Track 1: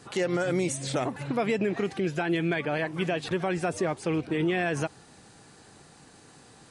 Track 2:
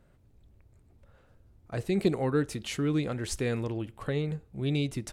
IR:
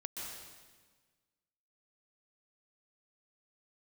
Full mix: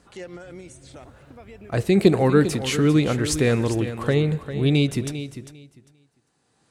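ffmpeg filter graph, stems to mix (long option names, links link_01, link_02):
-filter_complex "[0:a]volume=-7dB,asplit=2[link_01][link_02];[link_02]volume=-23dB[link_03];[1:a]dynaudnorm=framelen=560:gausssize=3:maxgain=6.5dB,volume=3dB,asplit=4[link_04][link_05][link_06][link_07];[link_05]volume=-18dB[link_08];[link_06]volume=-11dB[link_09];[link_07]apad=whole_len=295480[link_10];[link_01][link_10]sidechaincompress=threshold=-56dB:ratio=12:attack=6.2:release=801[link_11];[2:a]atrim=start_sample=2205[link_12];[link_03][link_08]amix=inputs=2:normalize=0[link_13];[link_13][link_12]afir=irnorm=-1:irlink=0[link_14];[link_09]aecho=0:1:399|798|1197:1|0.18|0.0324[link_15];[link_11][link_04][link_14][link_15]amix=inputs=4:normalize=0,highpass=44"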